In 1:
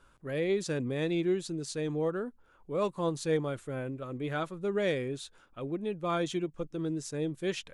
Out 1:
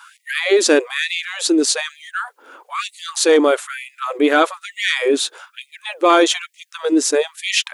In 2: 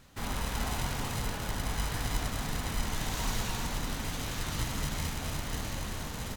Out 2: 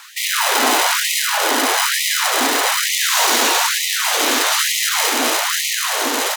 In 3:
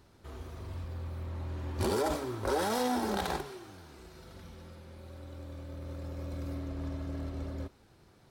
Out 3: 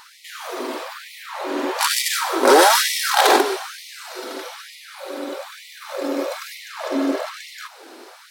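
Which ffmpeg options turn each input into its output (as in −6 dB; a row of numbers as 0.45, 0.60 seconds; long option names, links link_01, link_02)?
-af "apsyclip=29.5dB,afftfilt=real='re*gte(b*sr/1024,220*pow(1900/220,0.5+0.5*sin(2*PI*1.1*pts/sr)))':imag='im*gte(b*sr/1024,220*pow(1900/220,0.5+0.5*sin(2*PI*1.1*pts/sr)))':win_size=1024:overlap=0.75,volume=-6.5dB"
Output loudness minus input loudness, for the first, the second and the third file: +15.5, +19.5, +16.5 LU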